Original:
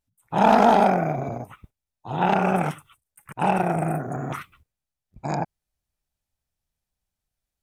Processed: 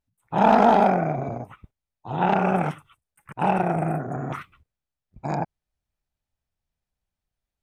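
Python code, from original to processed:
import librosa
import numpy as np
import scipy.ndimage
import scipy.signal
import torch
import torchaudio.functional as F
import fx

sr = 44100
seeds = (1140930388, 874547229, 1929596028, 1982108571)

y = fx.lowpass(x, sr, hz=3100.0, slope=6)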